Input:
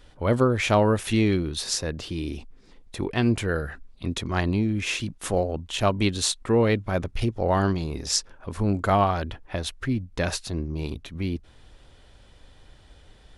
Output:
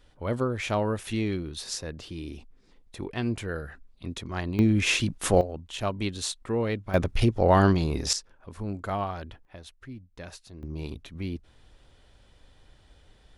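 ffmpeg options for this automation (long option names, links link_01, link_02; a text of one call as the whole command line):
ffmpeg -i in.wav -af "asetnsamples=nb_out_samples=441:pad=0,asendcmd='4.59 volume volume 3.5dB;5.41 volume volume -7dB;6.94 volume volume 3dB;8.13 volume volume -9.5dB;9.45 volume volume -16dB;10.63 volume volume -5dB',volume=-7dB" out.wav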